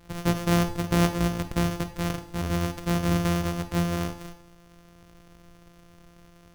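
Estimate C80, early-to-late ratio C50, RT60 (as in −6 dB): 15.0 dB, 11.5 dB, 0.60 s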